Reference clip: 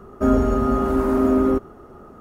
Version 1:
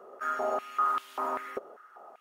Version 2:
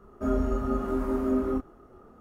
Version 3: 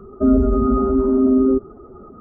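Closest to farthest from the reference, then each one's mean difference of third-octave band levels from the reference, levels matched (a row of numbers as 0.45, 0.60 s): 2, 3, 1; 1.5, 7.5, 10.0 dB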